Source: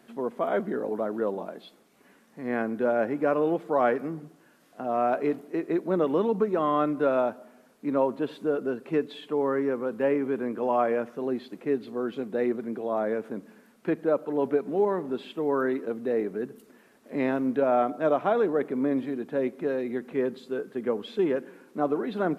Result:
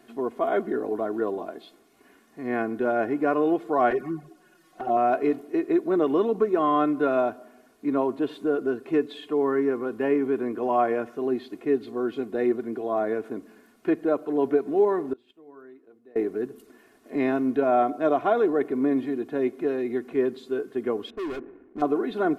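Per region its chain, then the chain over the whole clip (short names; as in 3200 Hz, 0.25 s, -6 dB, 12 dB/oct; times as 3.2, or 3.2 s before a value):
3.9–4.97 comb 5.5 ms, depth 98% + envelope flanger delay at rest 7.2 ms, full sweep at -22.5 dBFS
15.13–16.16 notches 60/120/180/240/300/360/420/480 Hz + flipped gate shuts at -33 dBFS, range -24 dB
21.1–21.82 median filter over 41 samples + LPF 2200 Hz 24 dB/oct + hard clip -33 dBFS
whole clip: low shelf 160 Hz +4.5 dB; comb 2.8 ms, depth 61%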